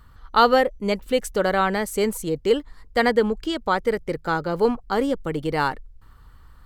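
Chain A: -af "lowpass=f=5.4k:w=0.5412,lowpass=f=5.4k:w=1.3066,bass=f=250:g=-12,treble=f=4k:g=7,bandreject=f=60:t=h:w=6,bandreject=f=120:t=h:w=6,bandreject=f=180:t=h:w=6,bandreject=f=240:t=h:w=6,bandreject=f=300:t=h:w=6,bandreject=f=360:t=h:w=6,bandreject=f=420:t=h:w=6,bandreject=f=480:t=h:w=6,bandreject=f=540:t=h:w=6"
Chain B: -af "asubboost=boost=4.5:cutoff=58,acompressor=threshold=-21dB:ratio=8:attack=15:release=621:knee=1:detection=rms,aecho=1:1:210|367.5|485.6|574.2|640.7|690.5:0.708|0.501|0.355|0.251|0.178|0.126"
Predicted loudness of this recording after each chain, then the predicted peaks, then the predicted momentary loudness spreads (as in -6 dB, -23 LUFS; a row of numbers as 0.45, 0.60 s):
-24.0, -26.5 LUFS; -2.5, -10.0 dBFS; 9, 4 LU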